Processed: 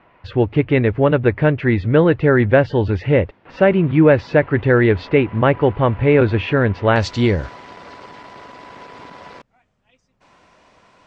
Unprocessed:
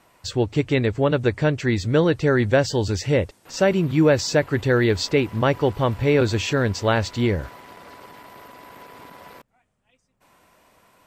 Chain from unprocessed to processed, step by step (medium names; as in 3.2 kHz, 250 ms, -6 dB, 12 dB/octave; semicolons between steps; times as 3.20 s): low-pass 2.7 kHz 24 dB/octave, from 6.96 s 6.3 kHz; trim +5 dB